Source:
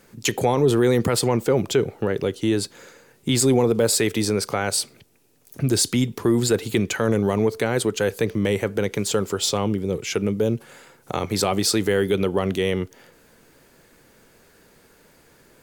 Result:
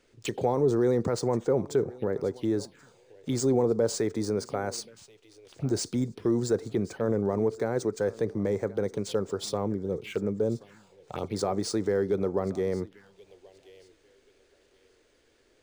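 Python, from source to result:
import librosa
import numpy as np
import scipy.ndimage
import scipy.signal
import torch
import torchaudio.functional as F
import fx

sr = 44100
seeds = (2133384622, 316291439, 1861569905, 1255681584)

p1 = fx.high_shelf(x, sr, hz=fx.line((6.68, 4300.0), (7.32, 7600.0)), db=-10.0, at=(6.68, 7.32), fade=0.02)
p2 = p1 + fx.echo_thinned(p1, sr, ms=1080, feedback_pct=23, hz=210.0, wet_db=-19.5, dry=0)
p3 = fx.dynamic_eq(p2, sr, hz=520.0, q=0.76, threshold_db=-28.0, ratio=4.0, max_db=4)
p4 = fx.env_phaser(p3, sr, low_hz=160.0, high_hz=2900.0, full_db=-18.0)
p5 = np.interp(np.arange(len(p4)), np.arange(len(p4))[::3], p4[::3])
y = F.gain(torch.from_numpy(p5), -8.5).numpy()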